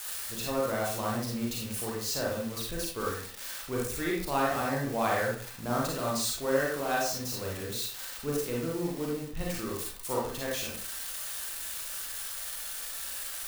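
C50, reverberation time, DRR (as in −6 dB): 1.5 dB, 0.50 s, −4.0 dB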